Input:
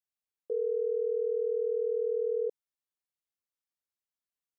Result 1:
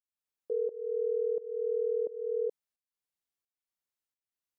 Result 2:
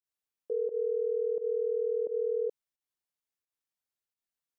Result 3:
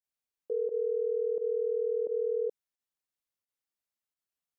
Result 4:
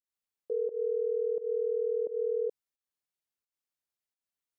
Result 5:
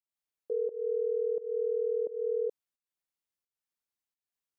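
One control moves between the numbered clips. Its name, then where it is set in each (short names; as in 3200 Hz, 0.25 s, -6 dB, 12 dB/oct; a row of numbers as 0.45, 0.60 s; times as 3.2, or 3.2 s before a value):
pump, release: 443, 105, 69, 167, 273 ms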